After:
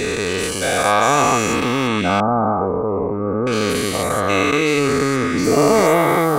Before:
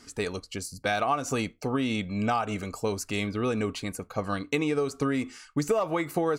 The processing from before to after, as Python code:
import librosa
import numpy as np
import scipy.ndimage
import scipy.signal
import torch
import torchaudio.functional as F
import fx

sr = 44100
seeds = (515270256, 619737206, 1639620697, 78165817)

y = fx.spec_dilate(x, sr, span_ms=480)
y = fx.steep_lowpass(y, sr, hz=1200.0, slope=36, at=(2.2, 3.47))
y = y * librosa.db_to_amplitude(3.5)